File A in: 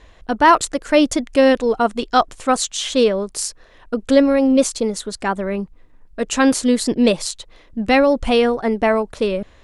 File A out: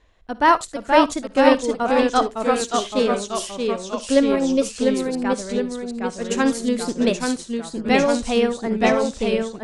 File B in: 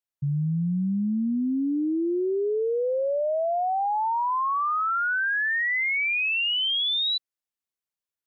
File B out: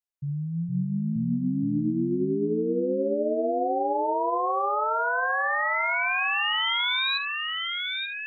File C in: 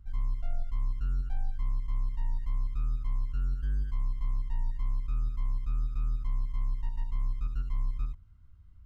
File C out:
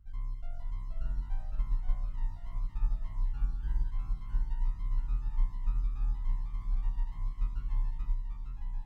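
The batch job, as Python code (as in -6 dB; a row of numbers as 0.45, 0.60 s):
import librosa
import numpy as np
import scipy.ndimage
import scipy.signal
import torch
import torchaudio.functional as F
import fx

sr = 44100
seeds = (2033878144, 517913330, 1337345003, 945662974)

y = fx.room_early_taps(x, sr, ms=(55, 72), db=(-15.5, -17.5))
y = fx.echo_pitch(y, sr, ms=452, semitones=-1, count=3, db_per_echo=-3.0)
y = fx.upward_expand(y, sr, threshold_db=-26.0, expansion=1.5)
y = y * 10.0 ** (-2.5 / 20.0)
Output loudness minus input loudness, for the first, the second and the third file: -3.0, -1.0, -2.5 LU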